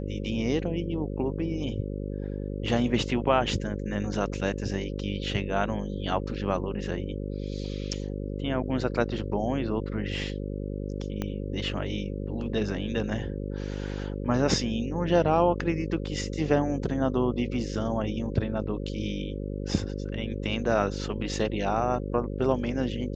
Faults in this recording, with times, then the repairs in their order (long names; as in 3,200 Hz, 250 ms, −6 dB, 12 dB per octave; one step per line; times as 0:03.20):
mains buzz 50 Hz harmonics 11 −33 dBFS
0:11.22: click −17 dBFS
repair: click removal
hum removal 50 Hz, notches 11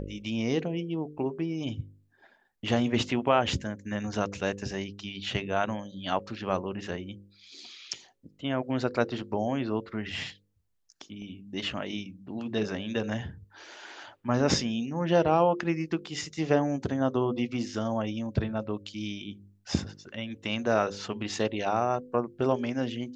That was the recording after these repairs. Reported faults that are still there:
0:11.22: click